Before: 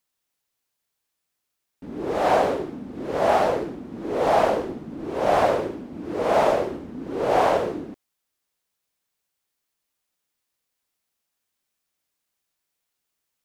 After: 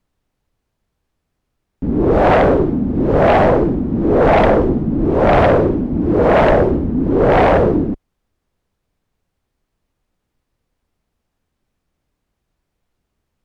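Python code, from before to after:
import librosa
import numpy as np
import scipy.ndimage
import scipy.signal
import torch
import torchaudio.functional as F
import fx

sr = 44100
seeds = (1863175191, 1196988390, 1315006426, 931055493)

p1 = fx.tilt_eq(x, sr, slope=-4.5)
p2 = fx.fold_sine(p1, sr, drive_db=13, ceiling_db=-1.5)
p3 = p1 + (p2 * 10.0 ** (-10.0 / 20.0))
y = p3 * 10.0 ** (-1.0 / 20.0)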